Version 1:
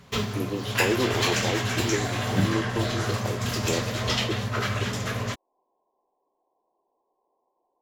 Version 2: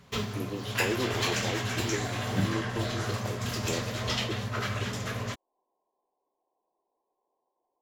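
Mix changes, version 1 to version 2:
speech -6.0 dB; background -4.5 dB

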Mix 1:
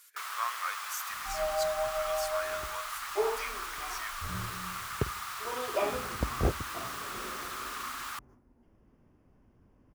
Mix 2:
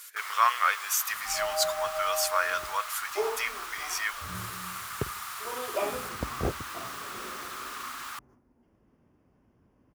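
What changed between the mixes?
speech +11.5 dB; master: add high-pass 95 Hz 6 dB/octave

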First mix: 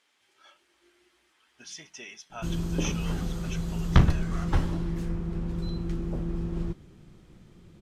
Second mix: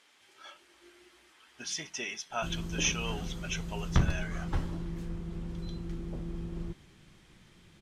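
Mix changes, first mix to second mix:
speech +6.5 dB; background -7.0 dB

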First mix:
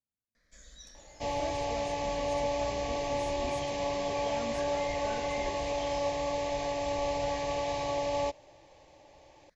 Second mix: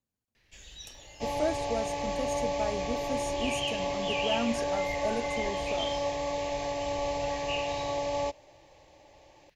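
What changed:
speech +11.0 dB; first sound: remove static phaser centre 560 Hz, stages 8; master: remove low-pass 8.9 kHz 12 dB/octave

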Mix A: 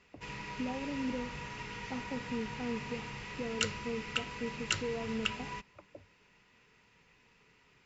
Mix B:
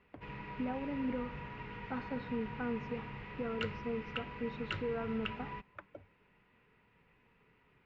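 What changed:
speech: remove boxcar filter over 27 samples; master: add distance through air 480 m

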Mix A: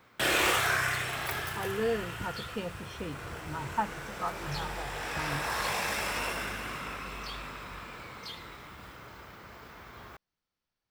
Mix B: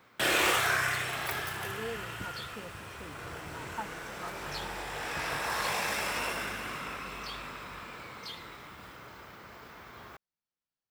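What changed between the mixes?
speech -9.0 dB; master: add bass shelf 70 Hz -9.5 dB

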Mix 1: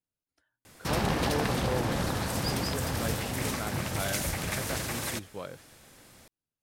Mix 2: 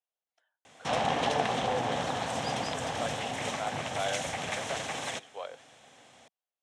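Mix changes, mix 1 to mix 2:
speech: add high-pass 440 Hz 24 dB/octave; master: add cabinet simulation 180–7500 Hz, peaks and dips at 190 Hz -6 dB, 340 Hz -8 dB, 740 Hz +8 dB, 1.4 kHz -3 dB, 3.2 kHz +5 dB, 4.7 kHz -9 dB

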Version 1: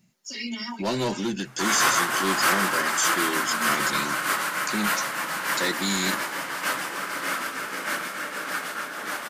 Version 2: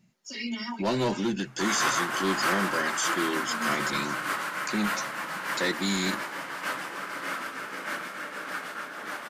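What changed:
background -4.0 dB; master: add treble shelf 5.1 kHz -8.5 dB

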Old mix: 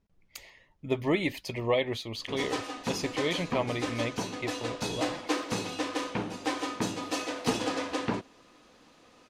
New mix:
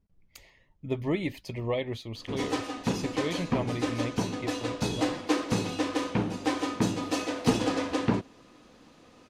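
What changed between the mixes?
speech -6.0 dB; master: add bass shelf 310 Hz +9.5 dB

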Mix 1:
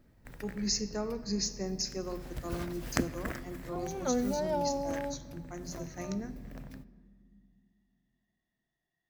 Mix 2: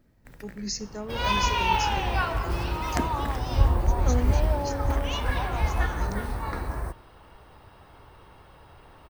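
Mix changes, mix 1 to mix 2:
speech: send -11.5 dB; second sound: unmuted

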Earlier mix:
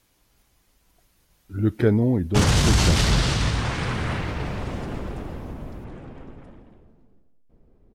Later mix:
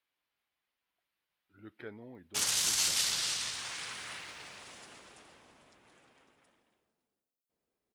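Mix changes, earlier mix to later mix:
speech: add distance through air 470 m; master: add differentiator

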